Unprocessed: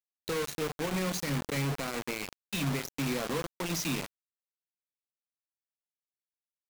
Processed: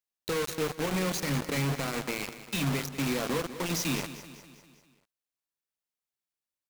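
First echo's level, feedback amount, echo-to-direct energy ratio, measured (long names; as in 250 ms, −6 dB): −13.5 dB, 53%, −12.0 dB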